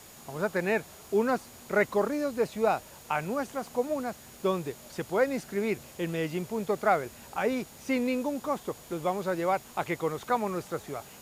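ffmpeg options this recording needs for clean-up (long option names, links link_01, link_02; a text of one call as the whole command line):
ffmpeg -i in.wav -af "adeclick=threshold=4,bandreject=frequency=6800:width=30,afftdn=noise_reduction=24:noise_floor=-50" out.wav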